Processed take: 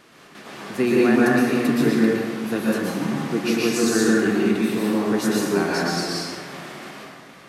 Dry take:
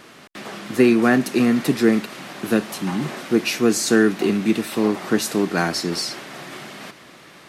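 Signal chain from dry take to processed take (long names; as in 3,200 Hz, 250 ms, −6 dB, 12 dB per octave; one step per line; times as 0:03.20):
dense smooth reverb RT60 1.7 s, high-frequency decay 0.5×, pre-delay 105 ms, DRR −5.5 dB
level −7 dB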